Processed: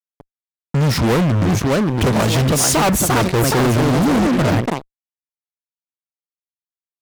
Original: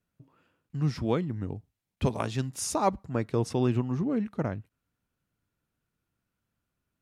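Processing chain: echoes that change speed 0.787 s, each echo +3 st, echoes 2, each echo -6 dB; fuzz box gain 41 dB, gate -44 dBFS

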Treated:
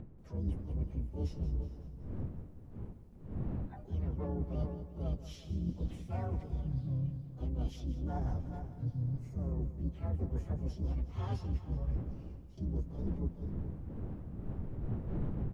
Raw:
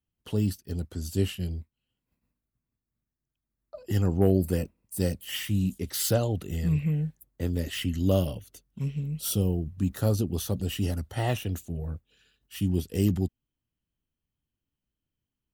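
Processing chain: inharmonic rescaling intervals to 126%; wind noise 200 Hz -42 dBFS; LPF 3000 Hz 12 dB/oct; on a send: echo 0.432 s -24 dB; on the sum: harmoniser -5 st -12 dB, +4 st -11 dB, +12 st -15 dB; reverse; compressor 12:1, threshold -37 dBFS, peak gain reduction 20 dB; reverse; low shelf 180 Hz +7 dB; gate with hold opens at -52 dBFS; upward compressor, threshold -46 dBFS; lo-fi delay 0.185 s, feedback 55%, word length 12-bit, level -12.5 dB

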